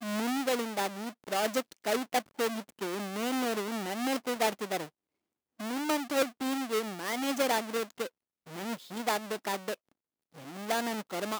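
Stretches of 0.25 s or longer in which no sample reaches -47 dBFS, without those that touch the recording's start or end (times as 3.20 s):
4.89–5.59 s
8.08–8.46 s
9.74–10.34 s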